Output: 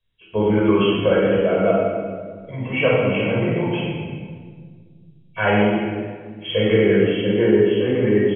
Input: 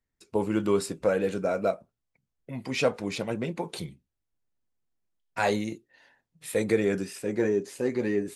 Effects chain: nonlinear frequency compression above 2200 Hz 4:1; outdoor echo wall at 51 m, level -18 dB; shoebox room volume 2200 m³, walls mixed, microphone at 5.4 m

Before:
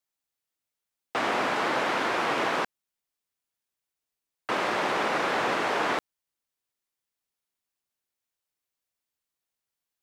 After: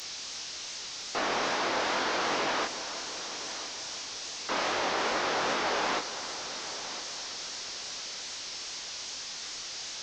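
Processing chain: delta modulation 32 kbps, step -36 dBFS; chorus 2.5 Hz, delay 19 ms, depth 7.7 ms; tone controls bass -5 dB, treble +14 dB; multi-head echo 0.337 s, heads first and third, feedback 49%, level -14.5 dB

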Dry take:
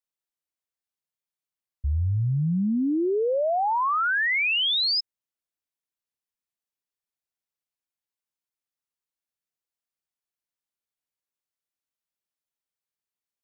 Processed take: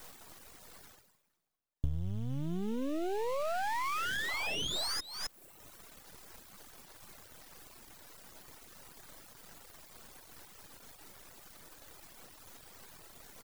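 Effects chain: speakerphone echo 0.26 s, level -18 dB; reverse; upward compressor, threshold -31 dBFS; reverse; low shelf 370 Hz +4 dB; in parallel at -4 dB: sample-rate reducer 3300 Hz, jitter 20%; on the sum: compressor 8:1, threshold -37 dBFS, peak gain reduction 21 dB; half-wave rectifier; reverb removal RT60 1.1 s; gain +8.5 dB

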